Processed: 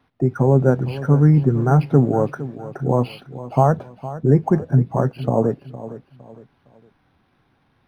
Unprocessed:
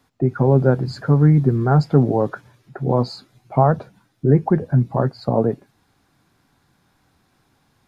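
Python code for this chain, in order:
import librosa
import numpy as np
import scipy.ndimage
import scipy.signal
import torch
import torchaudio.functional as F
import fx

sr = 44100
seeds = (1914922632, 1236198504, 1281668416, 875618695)

y = fx.echo_feedback(x, sr, ms=460, feedback_pct=34, wet_db=-15)
y = np.interp(np.arange(len(y)), np.arange(len(y))[::6], y[::6])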